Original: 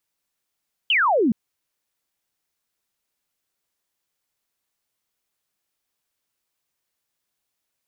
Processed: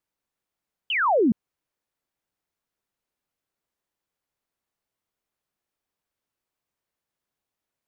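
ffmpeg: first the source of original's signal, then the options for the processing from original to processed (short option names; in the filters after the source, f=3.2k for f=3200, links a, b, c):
-f lavfi -i "aevalsrc='0.168*clip(t/0.002,0,1)*clip((0.42-t)/0.002,0,1)*sin(2*PI*3200*0.42/log(200/3200)*(exp(log(200/3200)*t/0.42)-1))':d=0.42:s=44100"
-af "highshelf=f=2.1k:g=-10.5"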